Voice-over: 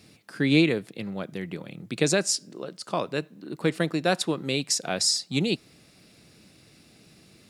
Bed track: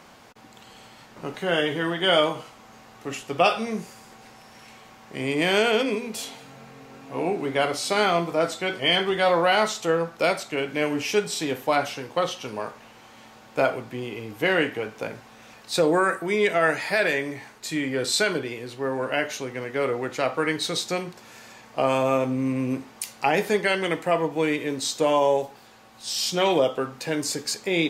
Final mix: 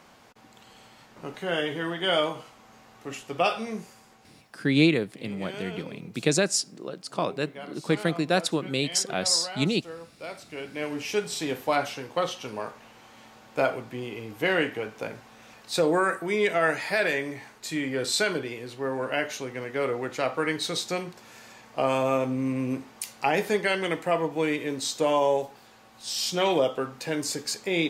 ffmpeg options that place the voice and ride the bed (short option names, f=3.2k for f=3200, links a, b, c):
-filter_complex "[0:a]adelay=4250,volume=0dB[a];[1:a]volume=11dB,afade=t=out:st=3.72:d=0.87:silence=0.211349,afade=t=in:st=10.21:d=1.26:silence=0.16788[b];[a][b]amix=inputs=2:normalize=0"